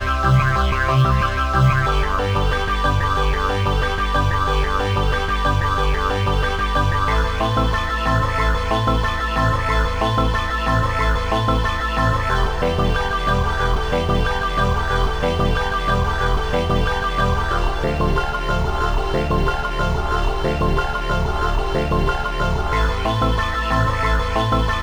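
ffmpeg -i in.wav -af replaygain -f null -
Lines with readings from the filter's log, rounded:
track_gain = +3.4 dB
track_peak = 0.428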